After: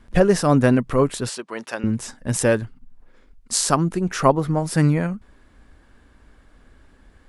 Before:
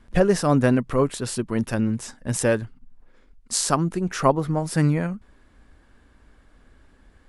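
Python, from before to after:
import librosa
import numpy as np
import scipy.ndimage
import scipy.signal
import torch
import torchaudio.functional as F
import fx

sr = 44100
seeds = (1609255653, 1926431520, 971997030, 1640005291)

y = fx.bandpass_edges(x, sr, low_hz=560.0, high_hz=7400.0, at=(1.29, 1.84))
y = F.gain(torch.from_numpy(y), 2.5).numpy()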